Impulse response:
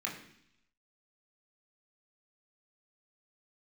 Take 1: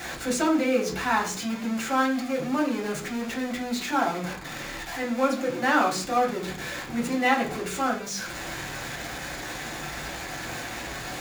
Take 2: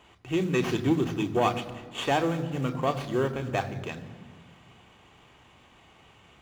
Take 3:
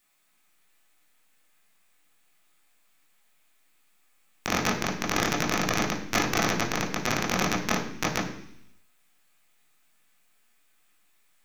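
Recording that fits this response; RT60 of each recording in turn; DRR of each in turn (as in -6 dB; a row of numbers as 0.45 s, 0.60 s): 3; 0.50 s, 1.9 s, 0.70 s; -3.5 dB, 6.0 dB, -3.0 dB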